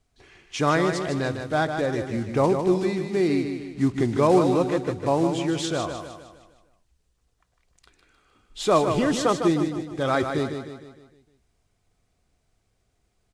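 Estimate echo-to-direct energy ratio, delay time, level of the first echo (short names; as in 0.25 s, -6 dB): -6.0 dB, 0.153 s, -7.0 dB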